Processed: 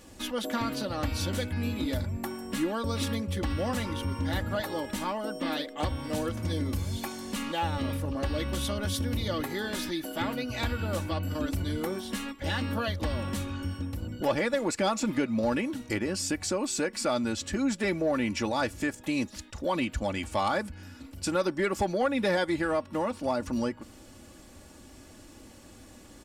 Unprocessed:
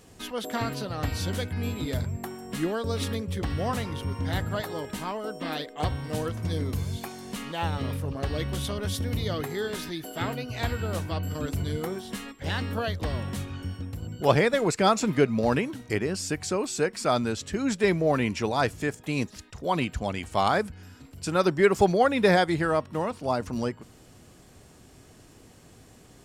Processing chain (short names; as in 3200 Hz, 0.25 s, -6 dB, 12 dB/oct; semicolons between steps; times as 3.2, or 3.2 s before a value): comb 3.5 ms, depth 62%; compressor 2:1, threshold -28 dBFS, peak gain reduction 9 dB; soft clip -17.5 dBFS, distortion -24 dB; gain +1 dB